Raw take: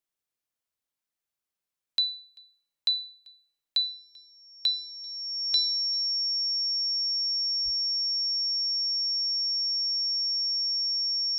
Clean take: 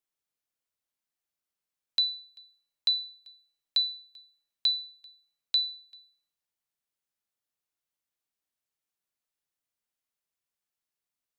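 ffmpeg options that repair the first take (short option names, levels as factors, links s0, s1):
-filter_complex "[0:a]bandreject=f=5500:w=30,asplit=3[s0][s1][s2];[s0]afade=t=out:st=7.64:d=0.02[s3];[s1]highpass=f=140:w=0.5412,highpass=f=140:w=1.3066,afade=t=in:st=7.64:d=0.02,afade=t=out:st=7.76:d=0.02[s4];[s2]afade=t=in:st=7.76:d=0.02[s5];[s3][s4][s5]amix=inputs=3:normalize=0"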